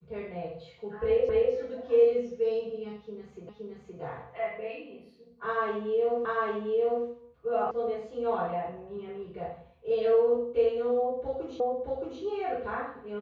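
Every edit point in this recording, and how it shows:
1.29 s: repeat of the last 0.25 s
3.49 s: repeat of the last 0.52 s
6.25 s: repeat of the last 0.8 s
7.71 s: sound stops dead
11.60 s: repeat of the last 0.62 s

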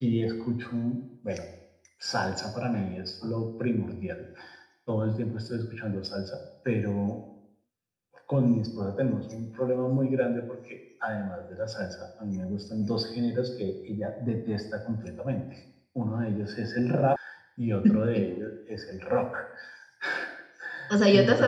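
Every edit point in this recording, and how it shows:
17.16 s: sound stops dead

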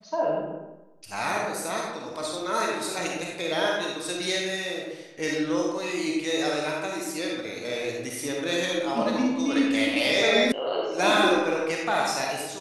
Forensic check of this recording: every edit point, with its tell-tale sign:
10.52 s: sound stops dead

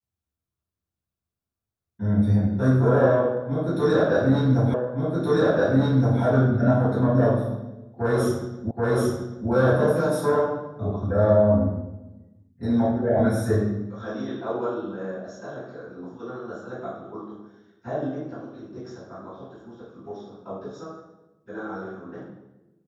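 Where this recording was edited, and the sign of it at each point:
4.74 s: repeat of the last 1.47 s
8.71 s: repeat of the last 0.78 s

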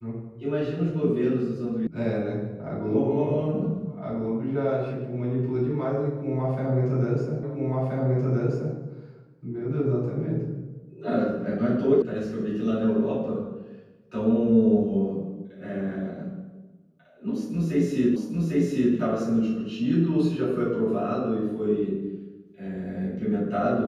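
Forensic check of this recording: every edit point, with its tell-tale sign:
1.87 s: sound stops dead
7.43 s: repeat of the last 1.33 s
12.02 s: sound stops dead
18.16 s: repeat of the last 0.8 s

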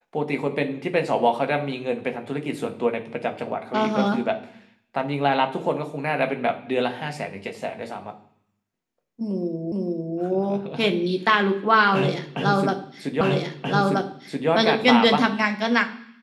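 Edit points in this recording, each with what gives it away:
9.72 s: repeat of the last 0.45 s
13.21 s: repeat of the last 1.28 s

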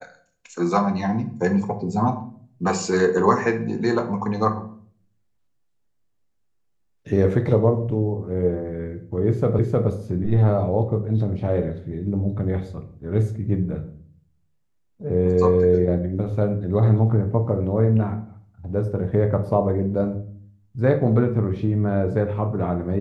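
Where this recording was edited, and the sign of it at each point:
9.59 s: repeat of the last 0.31 s

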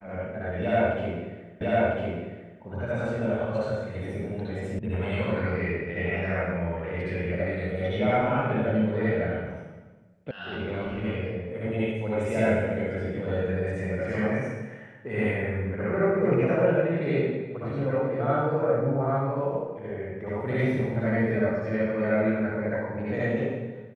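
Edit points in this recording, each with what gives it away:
1.61 s: repeat of the last 1 s
4.79 s: sound stops dead
10.31 s: sound stops dead

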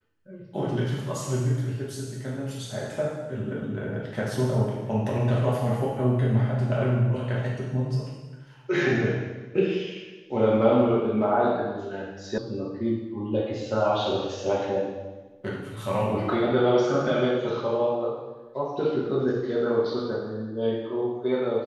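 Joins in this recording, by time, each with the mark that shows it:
12.38 s: sound stops dead

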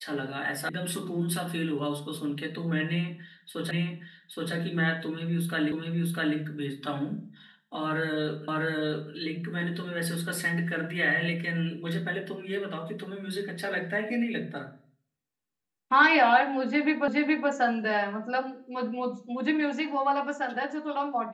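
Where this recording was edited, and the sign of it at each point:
0.69 s: sound stops dead
3.71 s: repeat of the last 0.82 s
5.72 s: repeat of the last 0.65 s
8.48 s: repeat of the last 0.65 s
17.08 s: repeat of the last 0.42 s

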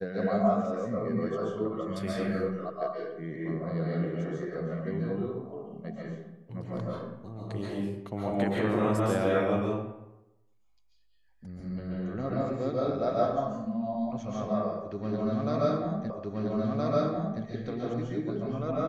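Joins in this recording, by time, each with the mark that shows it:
16.10 s: repeat of the last 1.32 s

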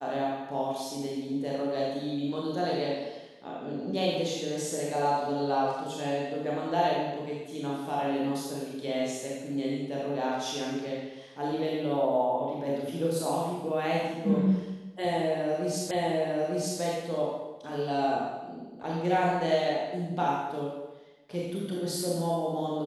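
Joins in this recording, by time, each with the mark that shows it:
15.91 s: repeat of the last 0.9 s

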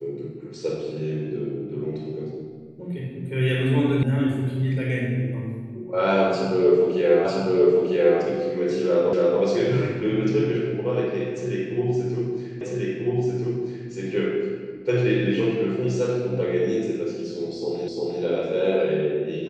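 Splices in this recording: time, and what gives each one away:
4.03 s: sound stops dead
7.25 s: repeat of the last 0.95 s
9.13 s: repeat of the last 0.28 s
12.61 s: repeat of the last 1.29 s
17.88 s: repeat of the last 0.35 s

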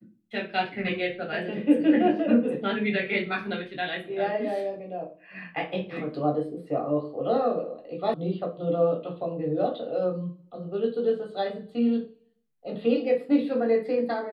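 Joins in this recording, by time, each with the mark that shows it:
8.14 s: sound stops dead

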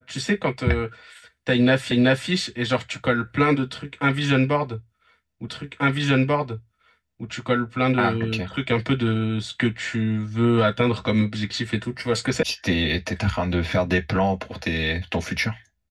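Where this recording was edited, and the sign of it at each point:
1.91 s: repeat of the last 0.38 s
5.48 s: repeat of the last 1.79 s
12.43 s: sound stops dead

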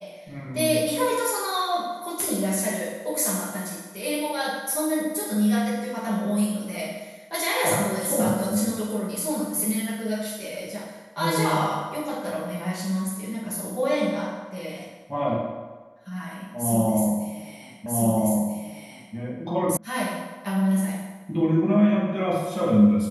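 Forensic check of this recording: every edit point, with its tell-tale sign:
17.86 s: repeat of the last 1.29 s
19.77 s: sound stops dead

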